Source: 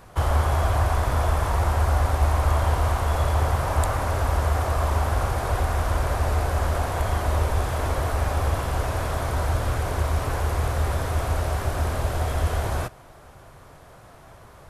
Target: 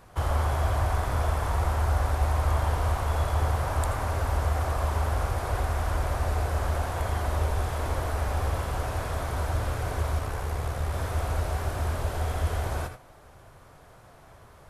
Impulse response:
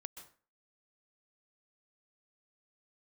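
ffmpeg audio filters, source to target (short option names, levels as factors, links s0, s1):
-filter_complex "[0:a]asettb=1/sr,asplit=3[s0][s1][s2];[s0]atrim=end=10.194[s3];[s1]atrim=start=10.19:end=10.94,asetpts=PTS-STARTPTS,afade=t=in:d=0.004:c=qsin,afade=t=out:st=0.746:d=0.004:c=qsin,tremolo=f=68:d=0.462[s4];[s2]atrim=start=10.936[s5];[s3][s4]acrossfade=d=0.004:c1=hsin:c2=qsin[s6];[s6][s5]acrossfade=d=0.004:c1=qsin:c2=hsin[s7];[1:a]atrim=start_sample=2205,afade=t=out:st=0.2:d=0.01,atrim=end_sample=9261,asetrate=70560,aresample=44100[s8];[s7][s8]afir=irnorm=-1:irlink=0,volume=1.68"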